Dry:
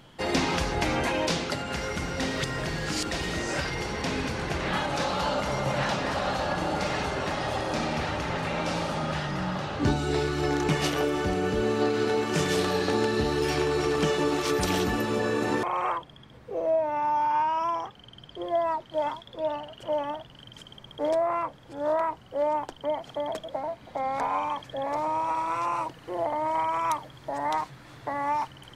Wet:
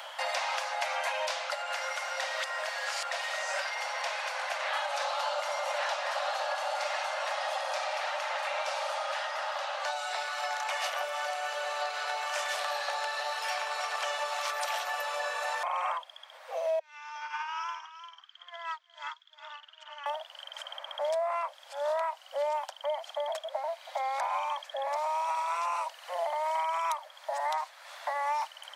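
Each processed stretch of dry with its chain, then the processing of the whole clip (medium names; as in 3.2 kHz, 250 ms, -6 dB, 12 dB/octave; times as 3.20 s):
16.79–20.06 s: Chebyshev band-pass 1.3–7 kHz, order 3 + delay 357 ms -7 dB + upward expansion 2.5:1, over -50 dBFS
whole clip: steep high-pass 550 Hz 96 dB/octave; three bands compressed up and down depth 70%; trim -2.5 dB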